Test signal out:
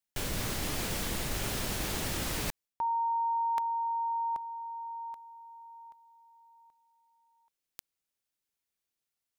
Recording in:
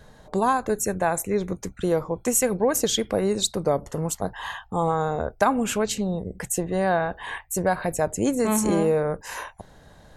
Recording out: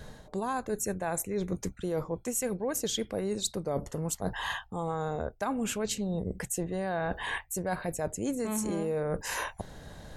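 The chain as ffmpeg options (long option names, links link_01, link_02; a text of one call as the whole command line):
ffmpeg -i in.wav -af "equalizer=frequency=1000:width=0.8:gain=-3.5,areverse,acompressor=threshold=-34dB:ratio=6,areverse,volume=4.5dB" out.wav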